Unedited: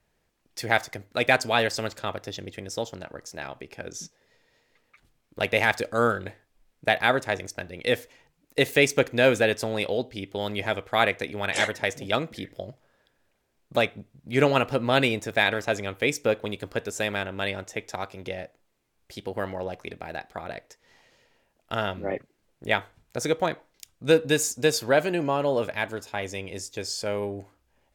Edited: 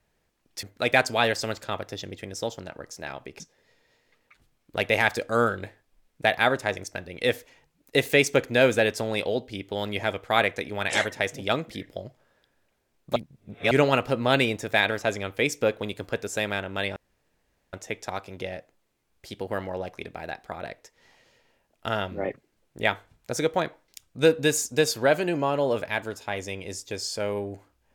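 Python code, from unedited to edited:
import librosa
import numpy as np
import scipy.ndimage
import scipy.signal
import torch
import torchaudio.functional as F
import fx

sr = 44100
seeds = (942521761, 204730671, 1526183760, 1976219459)

y = fx.edit(x, sr, fx.cut(start_s=0.63, length_s=0.35),
    fx.cut(start_s=3.75, length_s=0.28),
    fx.reverse_span(start_s=13.79, length_s=0.55),
    fx.insert_room_tone(at_s=17.59, length_s=0.77), tone=tone)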